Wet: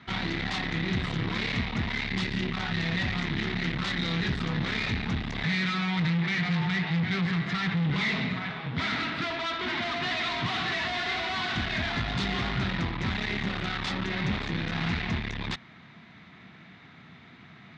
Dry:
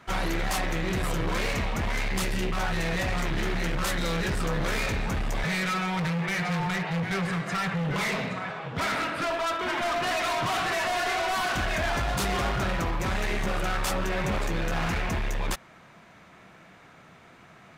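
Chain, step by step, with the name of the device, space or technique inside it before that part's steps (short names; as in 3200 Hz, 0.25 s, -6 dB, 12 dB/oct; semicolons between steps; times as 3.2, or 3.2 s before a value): guitar amplifier (tube stage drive 30 dB, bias 0.6; tone controls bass +9 dB, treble +12 dB; speaker cabinet 87–4000 Hz, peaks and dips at 240 Hz +5 dB, 550 Hz -8 dB, 2000 Hz +7 dB, 3700 Hz +6 dB)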